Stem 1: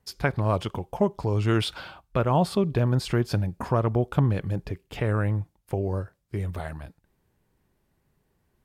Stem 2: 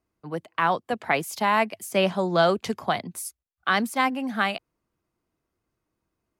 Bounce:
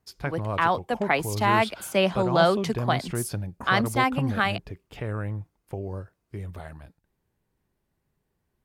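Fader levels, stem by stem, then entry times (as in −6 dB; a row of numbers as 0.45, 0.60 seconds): −6.0, 0.0 decibels; 0.00, 0.00 seconds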